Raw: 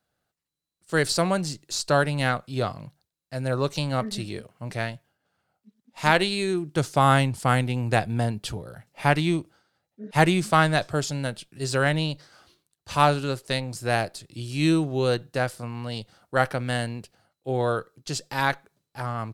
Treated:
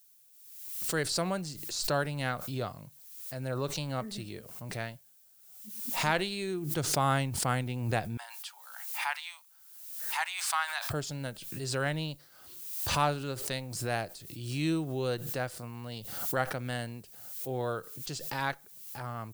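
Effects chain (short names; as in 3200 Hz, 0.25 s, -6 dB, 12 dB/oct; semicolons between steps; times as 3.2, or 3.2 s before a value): 8.17–10.9 elliptic high-pass 850 Hz, stop band 60 dB; added noise violet -52 dBFS; backwards sustainer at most 48 dB/s; gain -9 dB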